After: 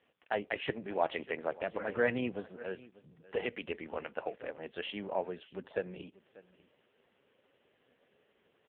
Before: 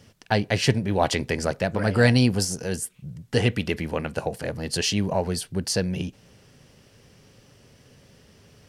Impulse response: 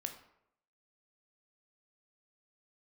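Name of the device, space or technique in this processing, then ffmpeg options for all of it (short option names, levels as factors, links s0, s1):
satellite phone: -af "highpass=360,lowpass=3400,aecho=1:1:591:0.106,volume=0.447" -ar 8000 -c:a libopencore_amrnb -b:a 5150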